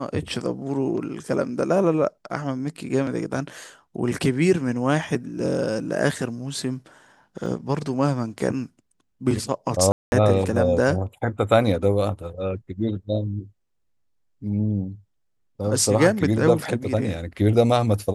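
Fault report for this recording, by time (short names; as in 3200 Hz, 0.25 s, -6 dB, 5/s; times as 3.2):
7.46 gap 2.4 ms
9.92–10.12 gap 0.201 s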